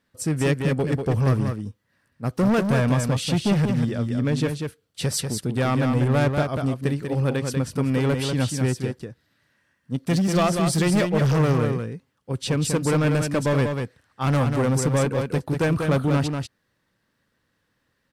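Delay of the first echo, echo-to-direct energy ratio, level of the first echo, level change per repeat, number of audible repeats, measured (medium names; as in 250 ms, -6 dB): 192 ms, -5.5 dB, -5.5 dB, no regular repeats, 1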